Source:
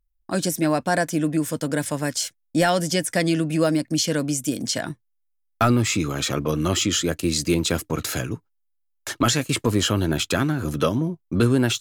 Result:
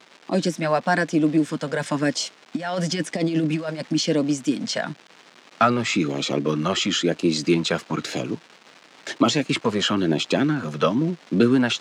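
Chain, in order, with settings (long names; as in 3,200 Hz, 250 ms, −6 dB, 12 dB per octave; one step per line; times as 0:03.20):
0:01.73–0:03.95: compressor whose output falls as the input rises −23 dBFS, ratio −0.5
auto-filter notch sine 1 Hz 280–1,700 Hz
surface crackle 560 per second −34 dBFS
high-pass filter 170 Hz 24 dB per octave
high-frequency loss of the air 130 metres
level +4 dB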